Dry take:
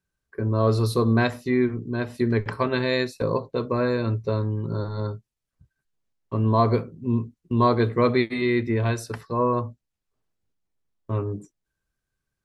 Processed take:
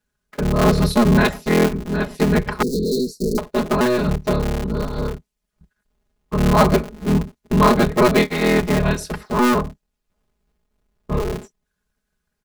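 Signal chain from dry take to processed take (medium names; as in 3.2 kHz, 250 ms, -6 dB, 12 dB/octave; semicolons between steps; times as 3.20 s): cycle switcher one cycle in 3, inverted; 2.62–3.38 s: Chebyshev band-stop 490–4300 Hz, order 5; comb 4.8 ms, depth 91%; trim +3 dB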